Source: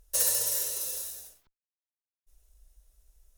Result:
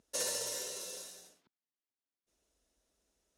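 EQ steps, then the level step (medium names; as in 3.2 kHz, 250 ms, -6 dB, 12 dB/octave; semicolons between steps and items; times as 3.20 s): band-pass 170–6300 Hz; peaking EQ 240 Hz +9.5 dB 1.5 oct; -2.5 dB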